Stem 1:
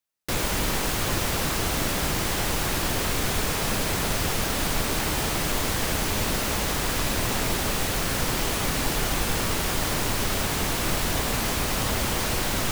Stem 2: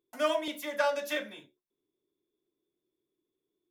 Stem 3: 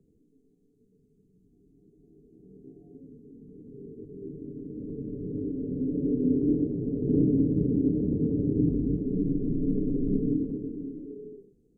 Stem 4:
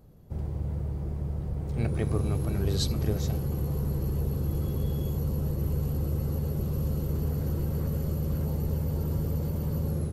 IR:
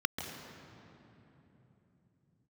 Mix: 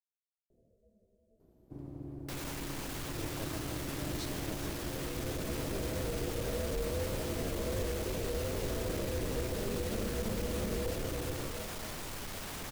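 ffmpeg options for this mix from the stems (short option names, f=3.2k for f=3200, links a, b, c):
-filter_complex "[0:a]alimiter=limit=-20dB:level=0:latency=1,asoftclip=type=tanh:threshold=-31.5dB,flanger=delay=3.1:depth=9.3:regen=-65:speed=1.9:shape=triangular,adelay=2000,volume=-2.5dB[a];[2:a]asplit=2[b][c];[c]adelay=11.6,afreqshift=2.8[d];[b][d]amix=inputs=2:normalize=1,adelay=500,volume=1.5dB[e];[3:a]adelay=1400,volume=-10dB[f];[e][f]amix=inputs=2:normalize=0,aeval=exprs='val(0)*sin(2*PI*210*n/s)':c=same,alimiter=level_in=3.5dB:limit=-24dB:level=0:latency=1,volume=-3.5dB,volume=0dB[g];[a][g]amix=inputs=2:normalize=0"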